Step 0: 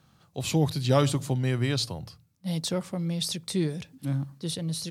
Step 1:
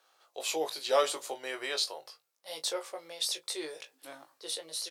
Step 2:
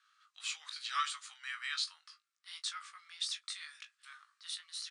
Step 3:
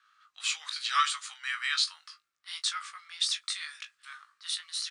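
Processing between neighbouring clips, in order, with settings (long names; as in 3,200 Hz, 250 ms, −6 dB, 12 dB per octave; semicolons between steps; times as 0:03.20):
inverse Chebyshev high-pass filter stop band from 220 Hz, stop band 40 dB; on a send: ambience of single reflections 19 ms −6 dB, 38 ms −17 dB; on the sum: level −2 dB
Chebyshev band-pass filter 1,200–9,600 Hz, order 5; spectral tilt −3 dB per octave; level +2 dB
one half of a high-frequency compander decoder only; level +8.5 dB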